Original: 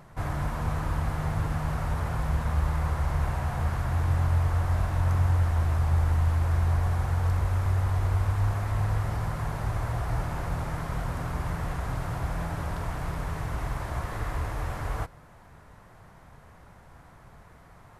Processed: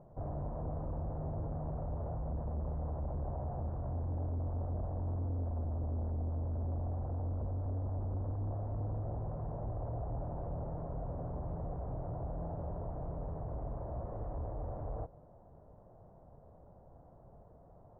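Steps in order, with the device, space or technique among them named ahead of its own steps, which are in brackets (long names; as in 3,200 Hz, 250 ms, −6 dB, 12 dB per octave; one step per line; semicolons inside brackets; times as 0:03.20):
overdriven synthesiser ladder filter (soft clipping −27 dBFS, distortion −10 dB; transistor ladder low-pass 740 Hz, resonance 45%)
level +2.5 dB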